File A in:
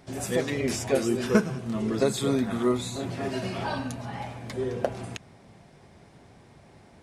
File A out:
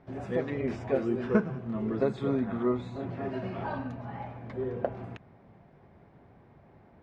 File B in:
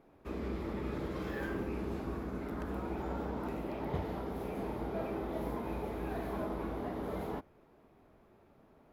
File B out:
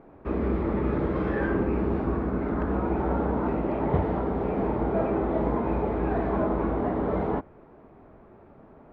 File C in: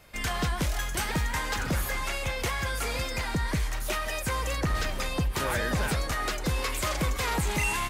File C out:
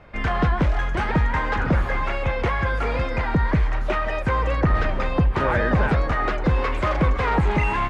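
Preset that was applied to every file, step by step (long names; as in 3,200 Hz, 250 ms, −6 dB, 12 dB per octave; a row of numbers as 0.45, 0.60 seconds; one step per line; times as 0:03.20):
low-pass filter 1,700 Hz 12 dB per octave
normalise the peak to −12 dBFS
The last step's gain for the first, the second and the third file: −3.5, +12.0, +9.0 decibels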